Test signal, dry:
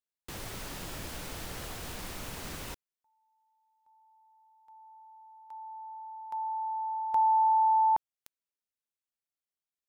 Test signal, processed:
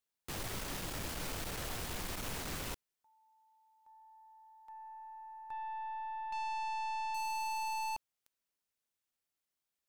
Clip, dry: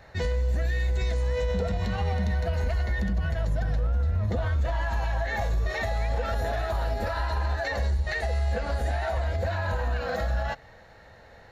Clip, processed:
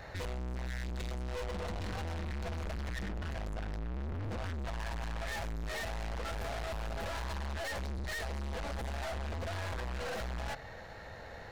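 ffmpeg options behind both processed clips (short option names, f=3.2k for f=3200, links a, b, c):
-af "aeval=exprs='(tanh(126*val(0)+0.35)-tanh(0.35))/126':c=same,volume=5dB"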